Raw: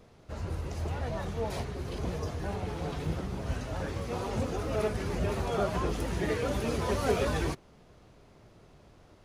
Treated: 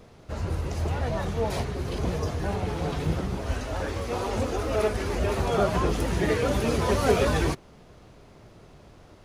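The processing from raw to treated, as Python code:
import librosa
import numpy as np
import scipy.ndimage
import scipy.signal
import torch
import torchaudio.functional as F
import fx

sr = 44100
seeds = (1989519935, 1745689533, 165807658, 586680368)

y = fx.peak_eq(x, sr, hz=150.0, db=-11.0, octaves=0.74, at=(3.36, 5.39))
y = y * 10.0 ** (6.0 / 20.0)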